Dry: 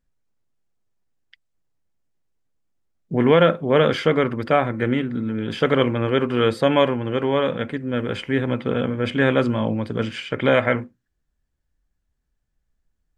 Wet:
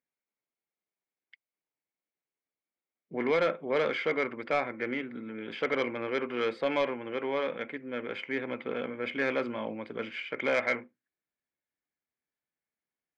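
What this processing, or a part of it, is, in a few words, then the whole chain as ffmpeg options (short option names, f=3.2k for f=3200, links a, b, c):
intercom: -af "highpass=310,lowpass=3.6k,equalizer=f=2.2k:t=o:w=0.23:g=11,asoftclip=type=tanh:threshold=-9dB,volume=-9dB"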